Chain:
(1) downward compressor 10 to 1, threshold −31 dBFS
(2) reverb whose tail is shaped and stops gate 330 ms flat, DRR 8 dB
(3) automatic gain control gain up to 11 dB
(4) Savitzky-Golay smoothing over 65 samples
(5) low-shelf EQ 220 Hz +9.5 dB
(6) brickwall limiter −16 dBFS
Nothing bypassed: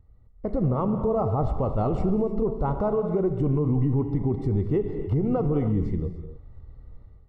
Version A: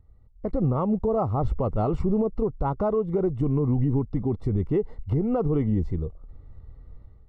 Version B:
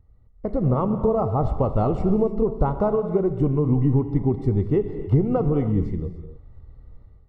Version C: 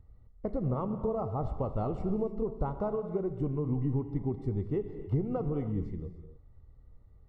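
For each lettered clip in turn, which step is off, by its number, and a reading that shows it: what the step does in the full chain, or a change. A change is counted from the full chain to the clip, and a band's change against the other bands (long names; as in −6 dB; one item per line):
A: 2, change in momentary loudness spread −1 LU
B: 6, average gain reduction 1.5 dB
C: 3, change in crest factor +6.0 dB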